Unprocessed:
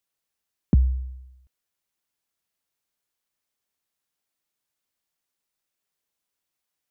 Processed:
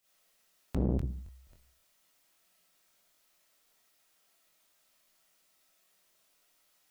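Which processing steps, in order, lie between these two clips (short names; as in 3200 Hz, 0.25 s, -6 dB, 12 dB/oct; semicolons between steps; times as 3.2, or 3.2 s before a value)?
bell 180 Hz +6 dB 0.21 oct; reverb RT60 0.45 s, pre-delay 5 ms, DRR -10 dB; in parallel at +2 dB: negative-ratio compressor -17 dBFS; on the sum: limiter -8 dBFS, peak gain reduction 7.5 dB; low shelf 140 Hz -6 dB; crackling interface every 0.27 s, samples 1024, repeat, from 0.7; core saturation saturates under 250 Hz; gain -6 dB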